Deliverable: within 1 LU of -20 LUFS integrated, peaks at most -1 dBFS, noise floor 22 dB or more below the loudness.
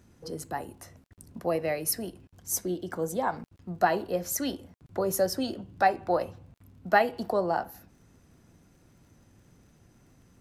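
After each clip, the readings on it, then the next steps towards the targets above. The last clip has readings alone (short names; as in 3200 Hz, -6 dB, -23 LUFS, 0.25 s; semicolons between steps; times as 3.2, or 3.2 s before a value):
ticks 25/s; loudness -29.5 LUFS; peak -9.5 dBFS; loudness target -20.0 LUFS
-> de-click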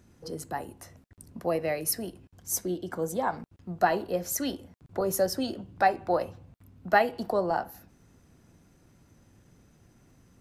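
ticks 0.19/s; loudness -29.5 LUFS; peak -9.5 dBFS; loudness target -20.0 LUFS
-> gain +9.5 dB; limiter -1 dBFS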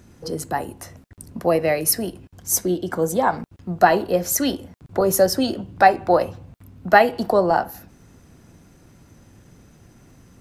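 loudness -20.0 LUFS; peak -1.0 dBFS; noise floor -52 dBFS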